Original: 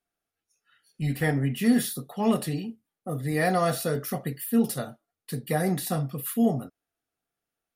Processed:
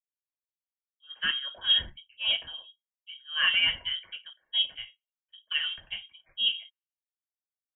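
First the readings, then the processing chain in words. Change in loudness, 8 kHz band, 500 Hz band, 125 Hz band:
0.0 dB, below −40 dB, −27.0 dB, below −25 dB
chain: Butterworth high-pass 250 Hz 36 dB per octave
low-pass that shuts in the quiet parts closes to 510 Hz, open at −24.5 dBFS
voice inversion scrambler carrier 3,500 Hz
multiband upward and downward expander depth 100%
level −3.5 dB

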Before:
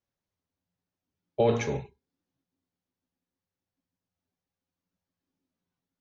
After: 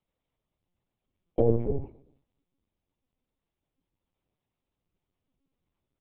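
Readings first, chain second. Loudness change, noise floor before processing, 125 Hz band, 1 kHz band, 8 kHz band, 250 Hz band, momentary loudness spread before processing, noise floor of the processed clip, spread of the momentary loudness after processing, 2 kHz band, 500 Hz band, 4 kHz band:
−0.5 dB, below −85 dBFS, +2.5 dB, −8.5 dB, can't be measured, +2.5 dB, 13 LU, below −85 dBFS, 13 LU, below −25 dB, −0.5 dB, below −20 dB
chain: parametric band 1,600 Hz −9 dB 0.32 octaves
treble cut that deepens with the level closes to 370 Hz, closed at −26.5 dBFS
on a send: repeating echo 126 ms, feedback 42%, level −23.5 dB
on the sum: linear-prediction vocoder at 8 kHz pitch kept
level +5.5 dB

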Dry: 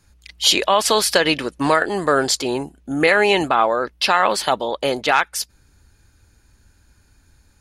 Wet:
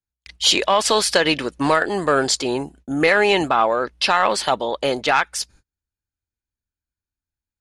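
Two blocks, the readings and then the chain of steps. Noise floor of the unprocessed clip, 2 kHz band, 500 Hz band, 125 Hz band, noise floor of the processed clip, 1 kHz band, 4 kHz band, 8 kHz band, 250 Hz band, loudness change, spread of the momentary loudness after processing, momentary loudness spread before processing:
−57 dBFS, −1.0 dB, −0.5 dB, 0.0 dB, below −85 dBFS, −1.0 dB, −0.5 dB, −1.0 dB, −0.5 dB, −0.5 dB, 8 LU, 9 LU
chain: soft clipping −3.5 dBFS, distortion −23 dB
low-pass filter 9,900 Hz 24 dB per octave
noise gate −45 dBFS, range −36 dB

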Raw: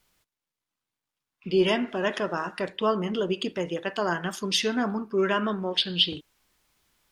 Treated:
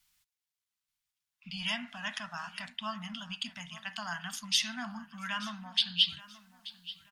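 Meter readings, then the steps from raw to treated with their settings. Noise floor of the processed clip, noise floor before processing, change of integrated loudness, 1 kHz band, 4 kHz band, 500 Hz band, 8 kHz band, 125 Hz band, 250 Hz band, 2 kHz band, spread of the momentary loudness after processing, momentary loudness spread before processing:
below −85 dBFS, below −85 dBFS, −7.0 dB, −10.5 dB, −2.5 dB, −26.5 dB, −1.0 dB, −12.5 dB, −14.5 dB, −5.5 dB, 16 LU, 7 LU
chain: Chebyshev band-stop filter 240–700 Hz, order 3
guitar amp tone stack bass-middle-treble 5-5-5
repeating echo 881 ms, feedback 30%, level −17.5 dB
level +5 dB

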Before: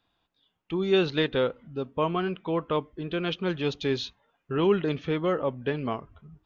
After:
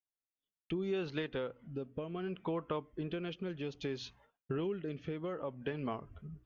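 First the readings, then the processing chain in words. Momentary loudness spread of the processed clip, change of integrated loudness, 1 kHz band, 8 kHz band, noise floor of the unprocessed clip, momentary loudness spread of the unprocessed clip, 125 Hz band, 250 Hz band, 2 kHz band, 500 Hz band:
6 LU, −11.5 dB, −13.0 dB, can't be measured, −77 dBFS, 10 LU, −9.5 dB, −10.5 dB, −12.5 dB, −12.0 dB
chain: mains-hum notches 60/120 Hz
downward expander −55 dBFS
parametric band 3,800 Hz −7.5 dB 0.27 octaves
downward compressor 6 to 1, threshold −36 dBFS, peak gain reduction 17 dB
rotating-speaker cabinet horn 0.65 Hz
level +2 dB

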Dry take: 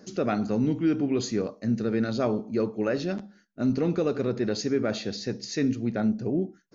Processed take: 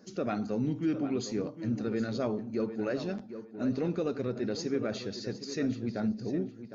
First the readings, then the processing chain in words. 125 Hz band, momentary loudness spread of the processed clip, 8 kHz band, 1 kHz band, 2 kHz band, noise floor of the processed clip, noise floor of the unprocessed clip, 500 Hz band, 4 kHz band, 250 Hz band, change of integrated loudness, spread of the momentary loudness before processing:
−5.5 dB, 5 LU, can't be measured, −5.5 dB, −6.0 dB, −49 dBFS, −59 dBFS, −5.5 dB, −6.0 dB, −5.5 dB, −5.5 dB, 6 LU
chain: spectral magnitudes quantised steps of 15 dB
tape delay 758 ms, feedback 25%, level −9.5 dB, low-pass 3,300 Hz
level −5.5 dB

